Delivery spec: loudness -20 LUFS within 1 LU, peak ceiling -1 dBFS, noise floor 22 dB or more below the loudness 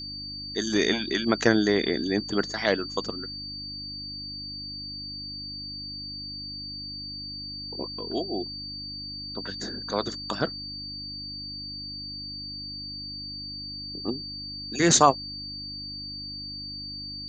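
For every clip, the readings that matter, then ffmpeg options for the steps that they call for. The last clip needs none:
hum 50 Hz; highest harmonic 300 Hz; hum level -42 dBFS; steady tone 4.6 kHz; tone level -35 dBFS; loudness -29.0 LUFS; peak level -4.0 dBFS; loudness target -20.0 LUFS
-> -af "bandreject=f=50:t=h:w=4,bandreject=f=100:t=h:w=4,bandreject=f=150:t=h:w=4,bandreject=f=200:t=h:w=4,bandreject=f=250:t=h:w=4,bandreject=f=300:t=h:w=4"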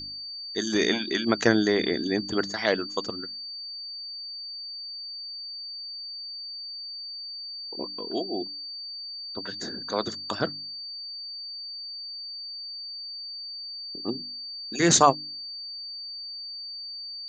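hum not found; steady tone 4.6 kHz; tone level -35 dBFS
-> -af "bandreject=f=4600:w=30"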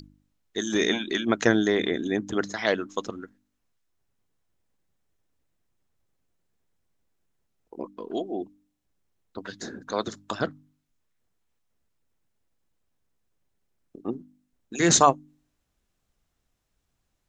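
steady tone not found; loudness -26.0 LUFS; peak level -4.0 dBFS; loudness target -20.0 LUFS
-> -af "volume=2,alimiter=limit=0.891:level=0:latency=1"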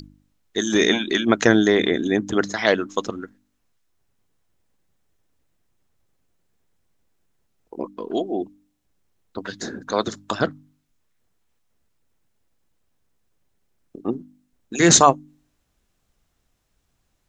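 loudness -20.0 LUFS; peak level -1.0 dBFS; noise floor -71 dBFS

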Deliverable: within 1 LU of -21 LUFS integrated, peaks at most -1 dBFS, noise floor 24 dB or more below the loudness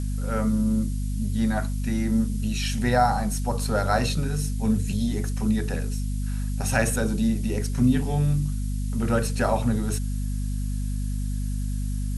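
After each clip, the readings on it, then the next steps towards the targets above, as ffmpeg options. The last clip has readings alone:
hum 50 Hz; highest harmonic 250 Hz; hum level -25 dBFS; noise floor -27 dBFS; noise floor target -50 dBFS; loudness -25.5 LUFS; peak level -7.0 dBFS; loudness target -21.0 LUFS
-> -af "bandreject=f=50:t=h:w=6,bandreject=f=100:t=h:w=6,bandreject=f=150:t=h:w=6,bandreject=f=200:t=h:w=6,bandreject=f=250:t=h:w=6"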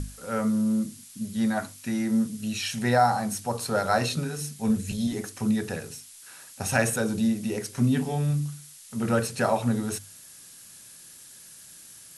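hum not found; noise floor -48 dBFS; noise floor target -51 dBFS
-> -af "afftdn=nr=6:nf=-48"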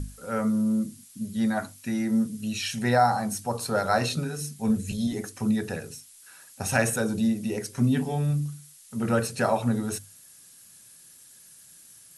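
noise floor -52 dBFS; loudness -27.0 LUFS; peak level -8.5 dBFS; loudness target -21.0 LUFS
-> -af "volume=2"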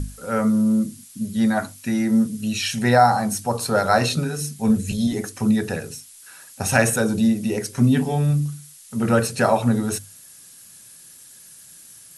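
loudness -21.0 LUFS; peak level -2.5 dBFS; noise floor -46 dBFS

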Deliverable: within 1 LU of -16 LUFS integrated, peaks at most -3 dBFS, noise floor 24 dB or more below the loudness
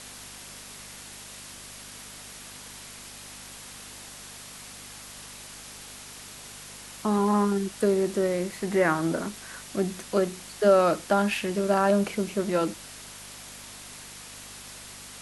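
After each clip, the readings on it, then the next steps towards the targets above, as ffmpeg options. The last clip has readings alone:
hum 50 Hz; highest harmonic 250 Hz; hum level -44 dBFS; noise floor -44 dBFS; noise floor target -50 dBFS; loudness -25.5 LUFS; peak level -8.0 dBFS; loudness target -16.0 LUFS
-> -af "bandreject=f=50:t=h:w=4,bandreject=f=100:t=h:w=4,bandreject=f=150:t=h:w=4,bandreject=f=200:t=h:w=4,bandreject=f=250:t=h:w=4"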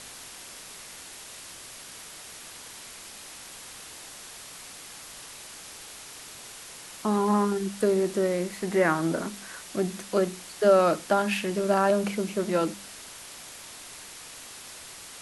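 hum not found; noise floor -44 dBFS; noise floor target -50 dBFS
-> -af "afftdn=nr=6:nf=-44"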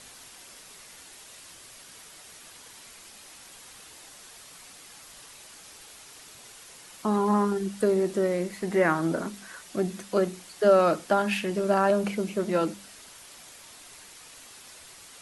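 noise floor -49 dBFS; noise floor target -50 dBFS
-> -af "afftdn=nr=6:nf=-49"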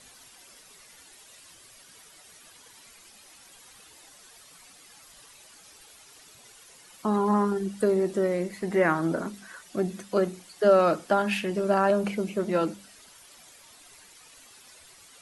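noise floor -53 dBFS; loudness -26.0 LUFS; peak level -9.0 dBFS; loudness target -16.0 LUFS
-> -af "volume=3.16,alimiter=limit=0.708:level=0:latency=1"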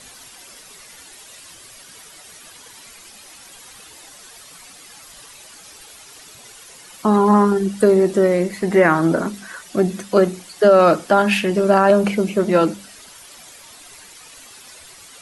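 loudness -16.5 LUFS; peak level -3.0 dBFS; noise floor -43 dBFS

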